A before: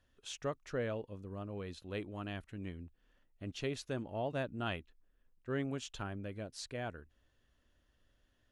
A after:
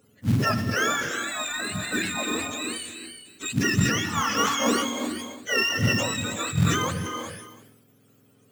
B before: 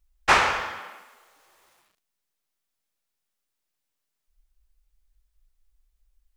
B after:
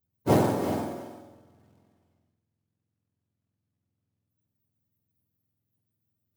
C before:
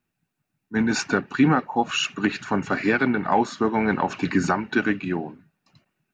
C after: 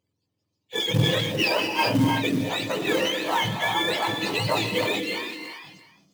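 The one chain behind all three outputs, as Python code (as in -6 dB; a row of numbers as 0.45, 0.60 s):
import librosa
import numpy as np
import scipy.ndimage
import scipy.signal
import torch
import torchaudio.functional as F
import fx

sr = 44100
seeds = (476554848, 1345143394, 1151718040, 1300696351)

y = fx.octave_mirror(x, sr, pivot_hz=870.0)
y = fx.quant_float(y, sr, bits=2)
y = y + 10.0 ** (-20.5 / 20.0) * np.pad(y, (int(334 * sr / 1000.0), 0))[:len(y)]
y = fx.rev_gated(y, sr, seeds[0], gate_ms=410, shape='rising', drr_db=5.5)
y = fx.sustainer(y, sr, db_per_s=43.0)
y = y * 10.0 ** (-9 / 20.0) / np.max(np.abs(y))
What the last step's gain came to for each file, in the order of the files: +15.0, -4.5, -1.0 dB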